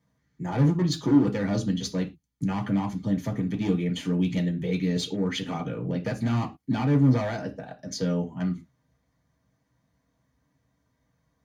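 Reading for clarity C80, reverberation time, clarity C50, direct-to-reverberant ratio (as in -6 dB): 22.0 dB, not exponential, 15.0 dB, 0.5 dB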